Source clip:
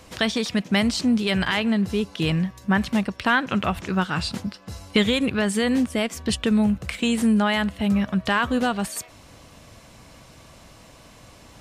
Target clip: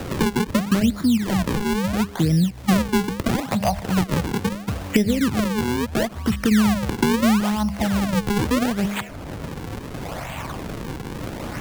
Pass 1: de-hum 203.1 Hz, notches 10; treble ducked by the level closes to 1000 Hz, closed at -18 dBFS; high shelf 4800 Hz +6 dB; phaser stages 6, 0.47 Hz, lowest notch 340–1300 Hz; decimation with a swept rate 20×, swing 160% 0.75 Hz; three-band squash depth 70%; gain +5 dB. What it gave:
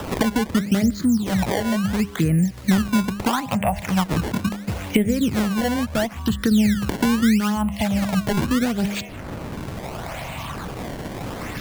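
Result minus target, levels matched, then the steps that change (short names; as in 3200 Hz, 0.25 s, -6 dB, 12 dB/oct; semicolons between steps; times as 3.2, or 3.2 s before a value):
decimation with a swept rate: distortion -5 dB
change: decimation with a swept rate 40×, swing 160% 0.75 Hz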